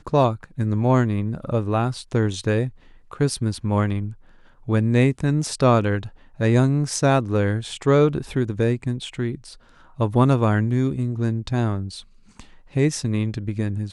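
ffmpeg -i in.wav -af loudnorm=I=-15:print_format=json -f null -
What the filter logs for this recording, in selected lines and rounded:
"input_i" : "-22.4",
"input_tp" : "-5.0",
"input_lra" : "4.4",
"input_thresh" : "-33.0",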